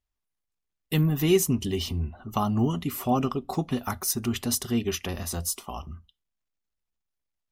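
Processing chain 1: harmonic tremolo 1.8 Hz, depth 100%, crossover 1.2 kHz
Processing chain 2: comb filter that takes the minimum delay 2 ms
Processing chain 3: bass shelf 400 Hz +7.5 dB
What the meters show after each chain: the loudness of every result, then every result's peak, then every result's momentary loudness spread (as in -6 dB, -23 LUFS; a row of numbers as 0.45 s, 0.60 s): -32.0 LUFS, -29.5 LUFS, -22.5 LUFS; -13.5 dBFS, -11.0 dBFS, -6.5 dBFS; 12 LU, 11 LU, 11 LU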